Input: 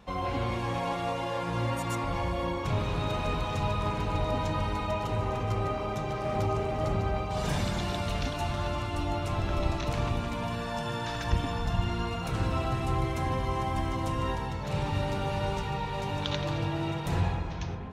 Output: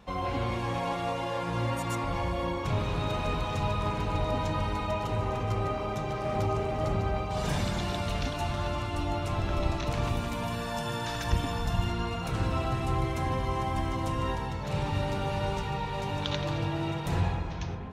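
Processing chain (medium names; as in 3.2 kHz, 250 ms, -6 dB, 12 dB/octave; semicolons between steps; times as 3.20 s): 10.03–11.92 s: treble shelf 8.8 kHz +11.5 dB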